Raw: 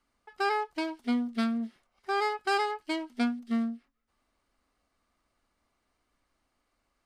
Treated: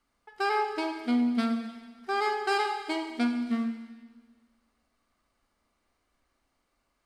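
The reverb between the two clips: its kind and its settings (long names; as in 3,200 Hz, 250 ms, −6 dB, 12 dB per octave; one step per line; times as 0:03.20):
four-comb reverb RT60 1.5 s, combs from 33 ms, DRR 5 dB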